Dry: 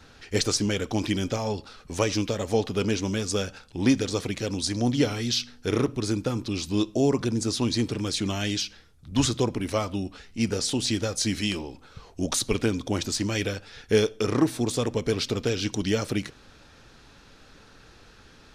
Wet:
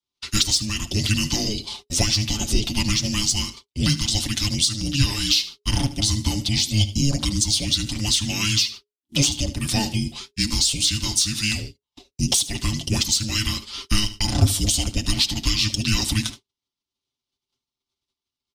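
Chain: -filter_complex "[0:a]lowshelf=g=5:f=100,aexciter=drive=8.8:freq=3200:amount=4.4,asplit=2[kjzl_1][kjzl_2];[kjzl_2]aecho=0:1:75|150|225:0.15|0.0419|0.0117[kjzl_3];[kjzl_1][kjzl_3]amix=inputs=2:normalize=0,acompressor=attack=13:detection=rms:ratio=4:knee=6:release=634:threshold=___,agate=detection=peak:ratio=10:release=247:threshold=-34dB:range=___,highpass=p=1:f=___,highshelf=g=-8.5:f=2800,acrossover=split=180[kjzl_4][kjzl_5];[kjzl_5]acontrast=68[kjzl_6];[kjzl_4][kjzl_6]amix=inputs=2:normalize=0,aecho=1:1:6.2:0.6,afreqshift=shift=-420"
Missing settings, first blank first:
-18dB, -50dB, 41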